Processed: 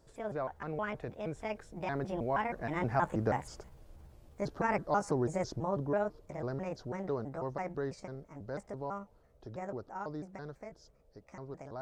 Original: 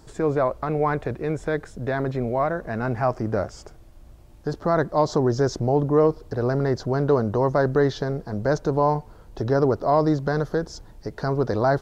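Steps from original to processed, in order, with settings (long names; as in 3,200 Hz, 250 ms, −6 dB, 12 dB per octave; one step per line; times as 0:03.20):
pitch shifter gated in a rhythm +5.5 semitones, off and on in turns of 161 ms
source passing by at 0:03.49, 9 m/s, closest 11 metres
noise in a band 400–650 Hz −67 dBFS
level −6 dB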